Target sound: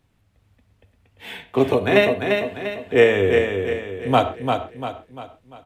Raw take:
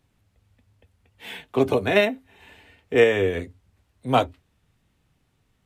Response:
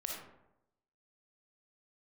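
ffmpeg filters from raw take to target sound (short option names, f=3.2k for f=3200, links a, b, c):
-filter_complex "[0:a]aecho=1:1:346|692|1038|1384|1730:0.562|0.242|0.104|0.0447|0.0192,asplit=2[a][b];[1:a]atrim=start_sample=2205,atrim=end_sample=6174,lowpass=4.8k[c];[b][c]afir=irnorm=-1:irlink=0,volume=-7dB[d];[a][d]amix=inputs=2:normalize=0"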